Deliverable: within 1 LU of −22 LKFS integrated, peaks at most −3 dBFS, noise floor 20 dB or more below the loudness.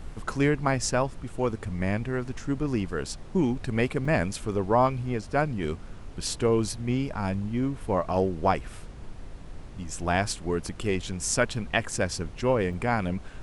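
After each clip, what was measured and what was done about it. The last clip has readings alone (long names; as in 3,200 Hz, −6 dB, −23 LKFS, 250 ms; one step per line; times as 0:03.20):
number of dropouts 2; longest dropout 3.8 ms; background noise floor −42 dBFS; target noise floor −48 dBFS; integrated loudness −28.0 LKFS; sample peak −8.0 dBFS; target loudness −22.0 LKFS
→ repair the gap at 0:04.05/0:12.73, 3.8 ms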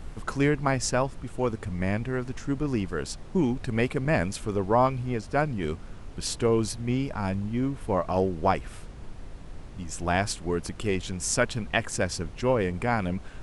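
number of dropouts 0; background noise floor −42 dBFS; target noise floor −48 dBFS
→ noise reduction from a noise print 6 dB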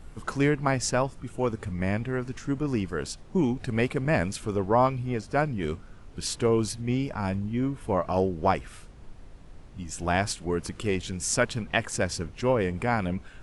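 background noise floor −47 dBFS; target noise floor −48 dBFS
→ noise reduction from a noise print 6 dB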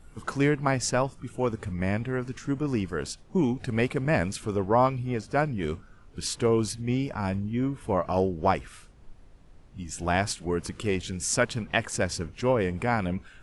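background noise floor −52 dBFS; integrated loudness −28.0 LKFS; sample peak −8.0 dBFS; target loudness −22.0 LKFS
→ level +6 dB
brickwall limiter −3 dBFS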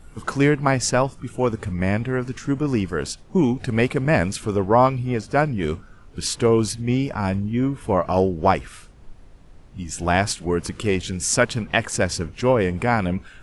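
integrated loudness −22.0 LKFS; sample peak −3.0 dBFS; background noise floor −46 dBFS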